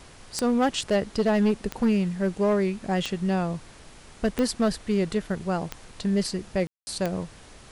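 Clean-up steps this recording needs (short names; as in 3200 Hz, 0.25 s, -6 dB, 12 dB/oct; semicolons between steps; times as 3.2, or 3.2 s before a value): clip repair -16.5 dBFS; de-click; room tone fill 6.67–6.87; noise print and reduce 23 dB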